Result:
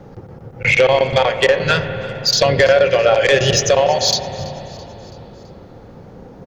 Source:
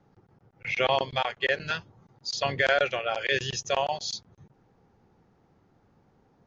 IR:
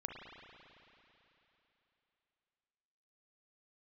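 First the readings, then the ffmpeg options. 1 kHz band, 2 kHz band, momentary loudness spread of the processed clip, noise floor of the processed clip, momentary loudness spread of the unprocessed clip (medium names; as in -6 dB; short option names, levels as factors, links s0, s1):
+10.0 dB, +10.0 dB, 14 LU, -40 dBFS, 10 LU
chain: -filter_complex "[0:a]equalizer=f=520:w=3.5:g=10,acompressor=threshold=0.0316:ratio=5,aeval=exprs='0.112*sin(PI/2*1.58*val(0)/0.112)':c=same,asplit=5[s0][s1][s2][s3][s4];[s1]adelay=331,afreqshift=40,volume=0.0944[s5];[s2]adelay=662,afreqshift=80,volume=0.0501[s6];[s3]adelay=993,afreqshift=120,volume=0.0266[s7];[s4]adelay=1324,afreqshift=160,volume=0.0141[s8];[s0][s5][s6][s7][s8]amix=inputs=5:normalize=0,asplit=2[s9][s10];[1:a]atrim=start_sample=2205,lowshelf=f=340:g=12[s11];[s10][s11]afir=irnorm=-1:irlink=0,volume=0.708[s12];[s9][s12]amix=inputs=2:normalize=0,volume=2.66"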